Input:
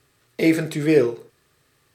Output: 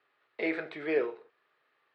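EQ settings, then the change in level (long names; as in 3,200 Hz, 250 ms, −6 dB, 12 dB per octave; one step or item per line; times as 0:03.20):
band-pass filter 690–5,700 Hz
high-frequency loss of the air 430 metres
−2.0 dB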